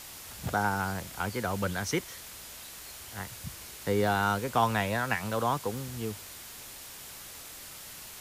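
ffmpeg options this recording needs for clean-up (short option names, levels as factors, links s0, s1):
-af "bandreject=f=7000:w=30,afwtdn=0.0063"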